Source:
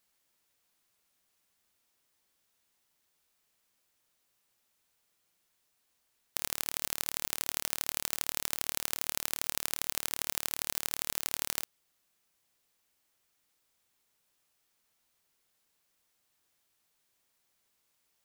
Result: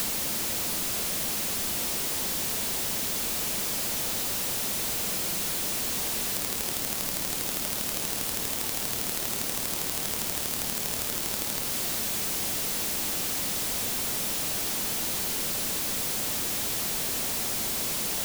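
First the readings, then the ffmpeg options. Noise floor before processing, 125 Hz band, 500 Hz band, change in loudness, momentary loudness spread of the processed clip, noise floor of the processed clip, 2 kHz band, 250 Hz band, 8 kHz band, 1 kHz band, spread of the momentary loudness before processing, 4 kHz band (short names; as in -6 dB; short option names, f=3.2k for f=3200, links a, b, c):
-77 dBFS, +16.5 dB, +14.5 dB, +6.5 dB, 1 LU, -31 dBFS, +9.0 dB, +17.5 dB, +11.5 dB, +10.5 dB, 1 LU, +11.0 dB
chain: -filter_complex "[0:a]aeval=exprs='val(0)+0.5*0.0631*sgn(val(0))':c=same,equalizer=f=210:t=o:w=0.58:g=4.5,acrossover=split=810|2300[a][b][c];[a]acompressor=threshold=-40dB:ratio=4[d];[b]acompressor=threshold=-52dB:ratio=4[e];[c]acompressor=threshold=-33dB:ratio=4[f];[d][e][f]amix=inputs=3:normalize=0,volume=5dB"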